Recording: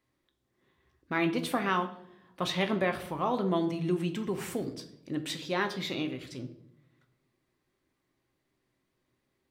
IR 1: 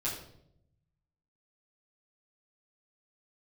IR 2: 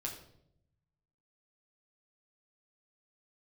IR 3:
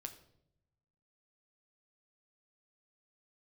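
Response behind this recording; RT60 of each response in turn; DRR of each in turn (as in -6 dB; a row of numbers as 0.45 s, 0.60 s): 3; 0.75 s, 0.75 s, 0.75 s; -9.0 dB, -1.5 dB, 5.5 dB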